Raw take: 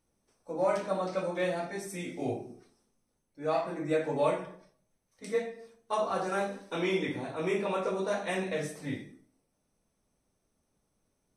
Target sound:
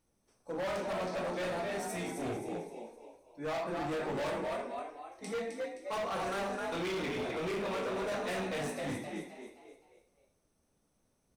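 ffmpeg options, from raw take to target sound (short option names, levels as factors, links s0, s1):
-filter_complex "[0:a]asplit=6[s0][s1][s2][s3][s4][s5];[s1]adelay=261,afreqshift=56,volume=0.501[s6];[s2]adelay=522,afreqshift=112,volume=0.207[s7];[s3]adelay=783,afreqshift=168,volume=0.0841[s8];[s4]adelay=1044,afreqshift=224,volume=0.0347[s9];[s5]adelay=1305,afreqshift=280,volume=0.0141[s10];[s0][s6][s7][s8][s9][s10]amix=inputs=6:normalize=0,asoftclip=type=hard:threshold=0.0224"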